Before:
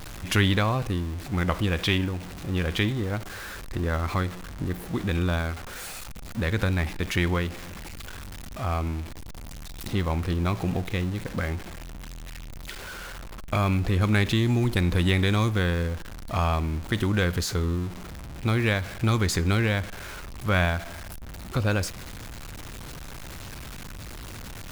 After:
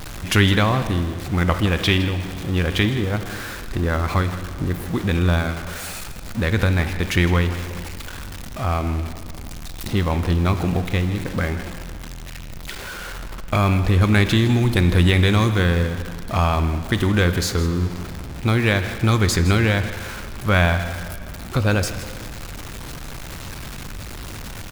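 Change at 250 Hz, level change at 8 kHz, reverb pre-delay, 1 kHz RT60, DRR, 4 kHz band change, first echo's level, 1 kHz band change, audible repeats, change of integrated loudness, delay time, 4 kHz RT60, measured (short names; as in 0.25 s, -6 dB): +6.0 dB, +6.0 dB, 6 ms, 2.5 s, 9.0 dB, +6.0 dB, -14.0 dB, +6.0 dB, 1, +6.0 dB, 0.161 s, 2.3 s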